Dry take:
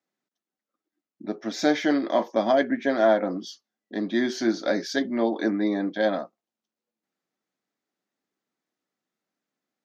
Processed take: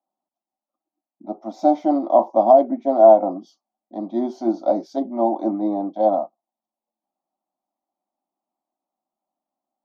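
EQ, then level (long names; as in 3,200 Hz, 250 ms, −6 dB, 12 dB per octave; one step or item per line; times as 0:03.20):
drawn EQ curve 280 Hz 0 dB, 780 Hz +13 dB, 2,500 Hz −12 dB
dynamic equaliser 350 Hz, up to +6 dB, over −25 dBFS, Q 0.89
phaser with its sweep stopped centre 450 Hz, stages 6
−2.5 dB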